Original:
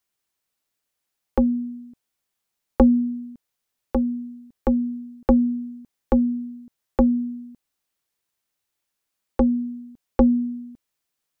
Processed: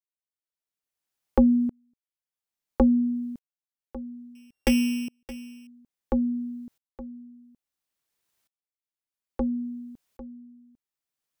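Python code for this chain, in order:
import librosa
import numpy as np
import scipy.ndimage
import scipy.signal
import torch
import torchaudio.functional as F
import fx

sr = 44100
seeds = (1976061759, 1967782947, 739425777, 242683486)

y = fx.sample_sort(x, sr, block=16, at=(4.35, 5.67))
y = fx.tremolo_decay(y, sr, direction='swelling', hz=0.59, depth_db=33)
y = y * librosa.db_to_amplitude(6.0)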